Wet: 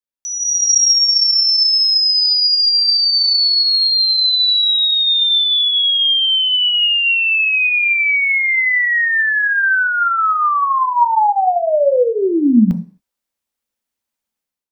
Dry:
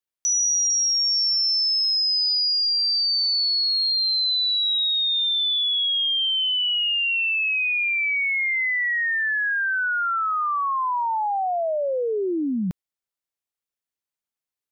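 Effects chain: AGC gain up to 14 dB; on a send: reverb RT60 0.45 s, pre-delay 3 ms, DRR 7.5 dB; on the sum: gain -6 dB

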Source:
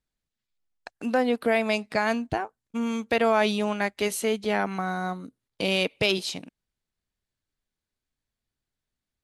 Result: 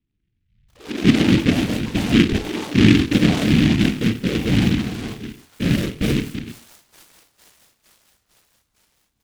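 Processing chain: echoes that change speed 0.108 s, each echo +5 st, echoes 3, each echo -6 dB; resonant low shelf 350 Hz +13.5 dB, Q 1.5; notch 720 Hz, Q 12; doubler 30 ms -3.5 dB; on a send: thin delay 0.455 s, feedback 68%, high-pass 3300 Hz, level -4.5 dB; on the sum: whisperiser; LPF 5500 Hz 12 dB/oct; tilt shelf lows +5.5 dB, about 1300 Hz; non-linear reverb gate 0.18 s falling, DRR 7.5 dB; noise-modulated delay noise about 2400 Hz, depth 0.16 ms; gain -9.5 dB

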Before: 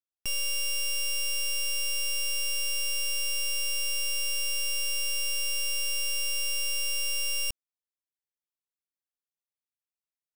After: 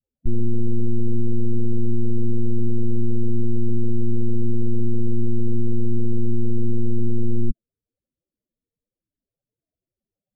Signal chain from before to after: low shelf 120 Hz +11.5 dB; sample-and-hold 33×; loudest bins only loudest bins 8; gain +7.5 dB

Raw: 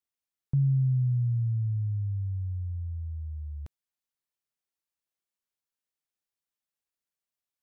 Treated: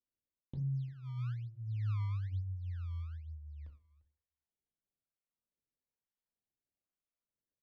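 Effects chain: gate with hold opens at -24 dBFS; bell 150 Hz -9.5 dB 1.6 oct; reverse; compressor 6:1, threshold -47 dBFS, peak gain reduction 15 dB; reverse; resonator 83 Hz, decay 0.15 s, mix 40%; echo 0.347 s -22 dB; reverb RT60 0.40 s, pre-delay 3 ms, DRR 2.5 dB; decimation with a swept rate 23×, swing 160% 1.1 Hz; air absorption 300 m; cascading phaser falling 0.55 Hz; gain +12 dB

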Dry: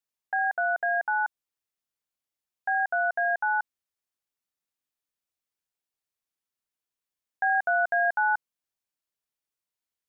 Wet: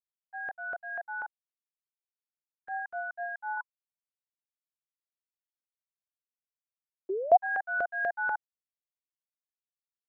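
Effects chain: expander -15 dBFS; 3.57–7.47 bell 1000 Hz +13 dB 0.24 oct; 7.09–7.37 painted sound rise 360–760 Hz -23 dBFS; LFO high-pass saw up 4.1 Hz 570–1500 Hz

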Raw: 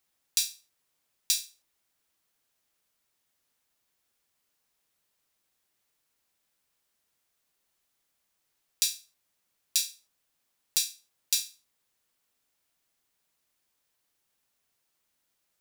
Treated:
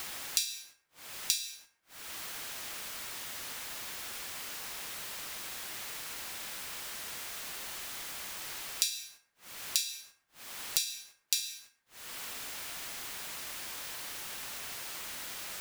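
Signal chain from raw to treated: upward compressor, threshold -29 dBFS; gate -60 dBFS, range -25 dB; bell 1900 Hz +5.5 dB 3 oct; plate-style reverb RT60 0.95 s, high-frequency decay 0.4×, pre-delay 90 ms, DRR 14.5 dB; compressor 16:1, threshold -33 dBFS, peak gain reduction 15 dB; mismatched tape noise reduction decoder only; gain +7.5 dB

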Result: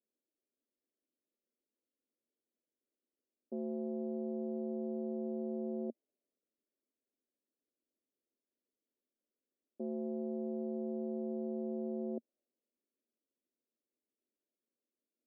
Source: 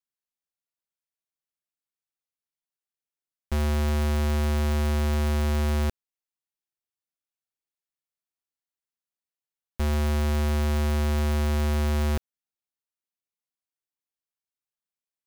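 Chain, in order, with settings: requantised 12-bit, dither triangular; low-pass opened by the level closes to 390 Hz; elliptic band-pass 230–620 Hz, stop band 50 dB; gain -5 dB

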